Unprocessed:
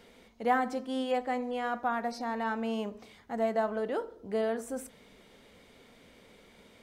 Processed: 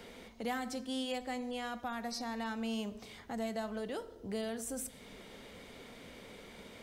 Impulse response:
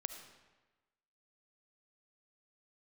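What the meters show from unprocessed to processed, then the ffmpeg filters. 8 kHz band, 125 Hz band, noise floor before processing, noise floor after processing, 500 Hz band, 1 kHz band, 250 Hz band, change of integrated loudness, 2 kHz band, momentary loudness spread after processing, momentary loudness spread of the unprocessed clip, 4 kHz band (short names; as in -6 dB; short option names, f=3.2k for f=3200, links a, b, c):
+5.5 dB, n/a, -59 dBFS, -54 dBFS, -9.0 dB, -10.0 dB, -3.5 dB, -7.0 dB, -6.0 dB, 14 LU, 11 LU, +2.5 dB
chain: -filter_complex "[0:a]acrossover=split=160|3000[a][b][c];[b]acompressor=threshold=-52dB:ratio=2.5[d];[a][d][c]amix=inputs=3:normalize=0,asplit=2[e][f];[1:a]atrim=start_sample=2205[g];[f][g]afir=irnorm=-1:irlink=0,volume=-8.5dB[h];[e][h]amix=inputs=2:normalize=0,volume=3.5dB"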